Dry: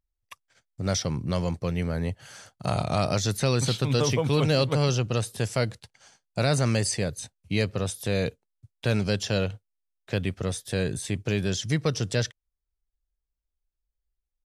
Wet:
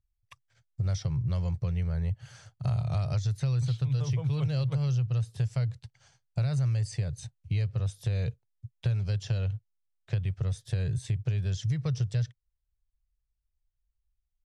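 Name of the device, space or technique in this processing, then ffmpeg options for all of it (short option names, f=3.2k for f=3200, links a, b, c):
jukebox: -af "lowpass=7.8k,lowshelf=f=170:t=q:w=3:g=10.5,acompressor=threshold=-19dB:ratio=5,volume=-7dB"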